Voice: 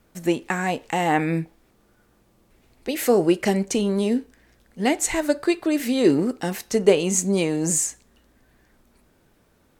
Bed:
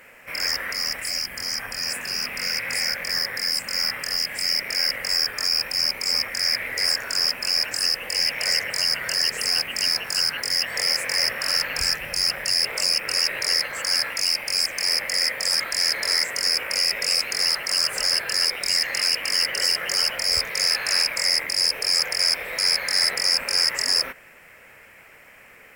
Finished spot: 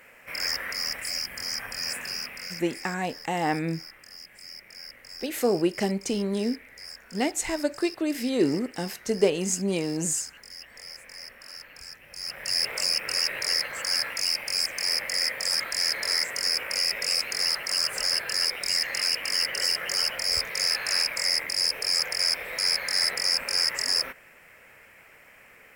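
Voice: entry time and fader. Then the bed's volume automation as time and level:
2.35 s, -5.5 dB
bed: 2.04 s -4 dB
2.99 s -20.5 dB
12 s -20.5 dB
12.56 s -4 dB

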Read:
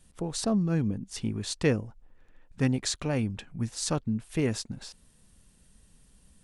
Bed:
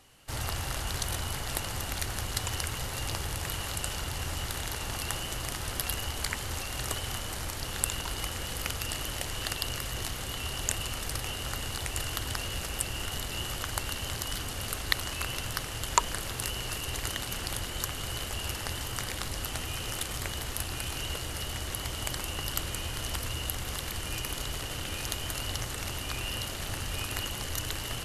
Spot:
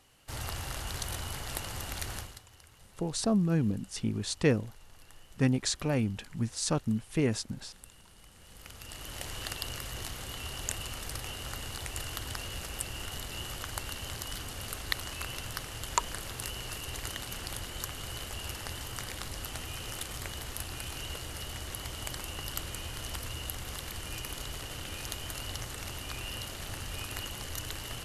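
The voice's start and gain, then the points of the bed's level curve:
2.80 s, -0.5 dB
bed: 2.17 s -4 dB
2.45 s -23.5 dB
8.26 s -23.5 dB
9.25 s -4.5 dB

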